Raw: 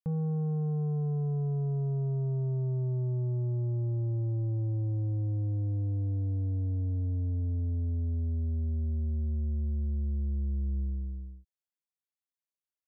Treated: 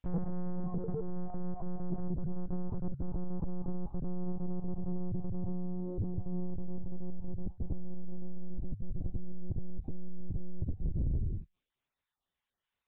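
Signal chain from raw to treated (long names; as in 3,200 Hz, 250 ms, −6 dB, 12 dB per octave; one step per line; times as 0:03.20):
time-frequency cells dropped at random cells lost 23%
brickwall limiter −35 dBFS, peak gain reduction 7 dB
mains-hum notches 50/100/150 Hz
one-pitch LPC vocoder at 8 kHz 180 Hz
soft clipping −39.5 dBFS, distortion −13 dB
level +12.5 dB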